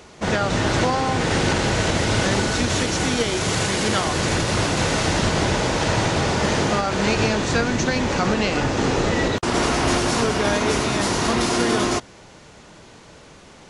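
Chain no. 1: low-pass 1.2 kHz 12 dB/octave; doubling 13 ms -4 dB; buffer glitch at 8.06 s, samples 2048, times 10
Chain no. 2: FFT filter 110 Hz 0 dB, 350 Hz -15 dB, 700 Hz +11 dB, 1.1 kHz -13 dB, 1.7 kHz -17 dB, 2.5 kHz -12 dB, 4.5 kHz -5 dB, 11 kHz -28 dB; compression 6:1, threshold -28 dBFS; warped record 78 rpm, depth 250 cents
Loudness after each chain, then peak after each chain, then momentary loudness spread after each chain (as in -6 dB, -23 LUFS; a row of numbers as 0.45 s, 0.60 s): -21.5 LUFS, -31.5 LUFS; -7.5 dBFS, -18.0 dBFS; 2 LU, 5 LU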